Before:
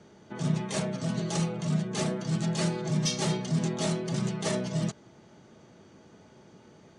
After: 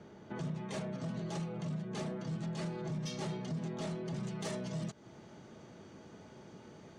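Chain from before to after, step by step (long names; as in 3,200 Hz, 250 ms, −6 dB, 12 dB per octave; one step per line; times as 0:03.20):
high-shelf EQ 4,400 Hz −11.5 dB, from 0:04.23 −2.5 dB
downward compressor 3 to 1, threshold −38 dBFS, peak gain reduction 12 dB
soft clipping −31.5 dBFS, distortion −19 dB
level +1 dB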